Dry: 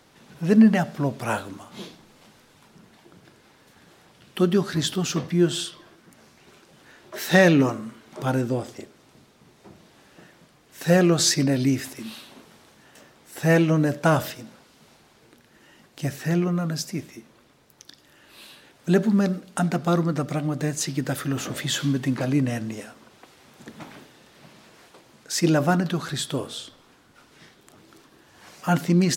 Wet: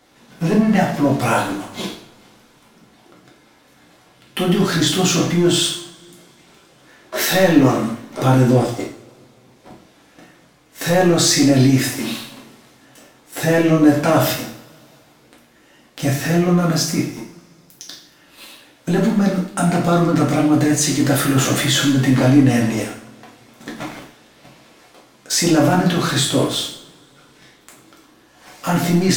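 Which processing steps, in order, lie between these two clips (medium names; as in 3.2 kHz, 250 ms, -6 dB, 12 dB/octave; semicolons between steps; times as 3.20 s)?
waveshaping leveller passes 2; peak limiter -14.5 dBFS, peak gain reduction 11.5 dB; two-slope reverb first 0.53 s, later 2.7 s, from -27 dB, DRR -3.5 dB; trim +2 dB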